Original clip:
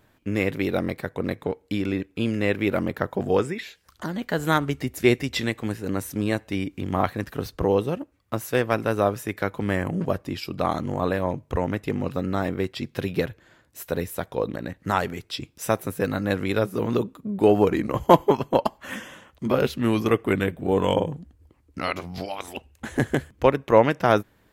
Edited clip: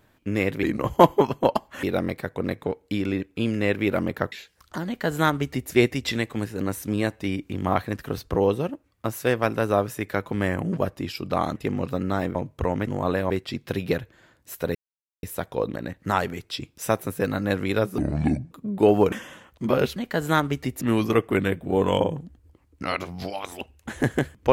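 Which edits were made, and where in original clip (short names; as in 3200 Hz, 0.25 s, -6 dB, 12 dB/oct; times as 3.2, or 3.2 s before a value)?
3.12–3.6 cut
4.14–4.99 copy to 19.77
10.84–11.27 swap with 11.79–12.58
14.03 insert silence 0.48 s
16.78–17.12 speed 64%
17.73–18.93 move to 0.63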